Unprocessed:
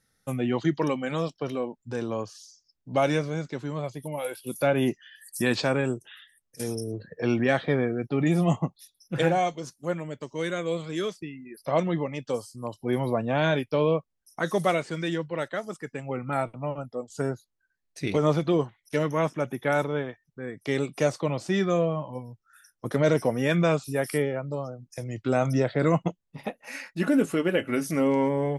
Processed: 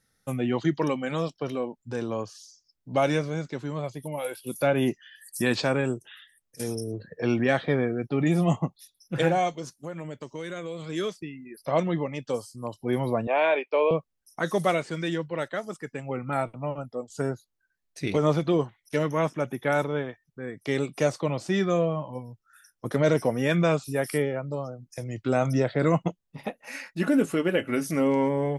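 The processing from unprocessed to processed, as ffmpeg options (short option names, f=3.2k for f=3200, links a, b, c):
-filter_complex "[0:a]asettb=1/sr,asplit=3[a][b][c];[a]atrim=end=9.714[d];[b]atrim=start=9.71:end=10.84,asetpts=PTS-STARTPTS,afade=t=in:d=0.004:c=qsin,afade=t=out:st=1.126:d=0.004:c=qsin,acompressor=threshold=-31dB:ratio=6:attack=3.2:release=140:knee=1:detection=peak[e];[c]atrim=start=10.836[f];[d][e]acrossfade=d=0.004:c1=hsin:c2=qsin[g];[g][f]acrossfade=d=0.004:c1=qsin:c2=hsin,asettb=1/sr,asplit=3[h][i][j];[h]atrim=end=13.274[k];[i]atrim=start=13.27:end=13.91,asetpts=PTS-STARTPTS,afade=t=in:d=0.004:c=qsin,afade=t=out:st=0.636:d=0.004:c=qsin,highpass=f=380:w=0.5412,highpass=f=380:w=1.3066,equalizer=f=400:t=q:w=4:g=3,equalizer=f=670:t=q:w=4:g=4,equalizer=f=970:t=q:w=4:g=5,equalizer=f=1.5k:t=q:w=4:g=-4,equalizer=f=2.4k:t=q:w=4:g=8,equalizer=f=3.5k:t=q:w=4:g=-6,lowpass=f=3.8k:w=0.5412,lowpass=f=3.8k:w=1.3066[l];[j]atrim=start=13.906[m];[k][l]acrossfade=d=0.004:c1=hsin:c2=qsin[n];[n][m]acrossfade=d=0.004:c1=qsin:c2=hsin"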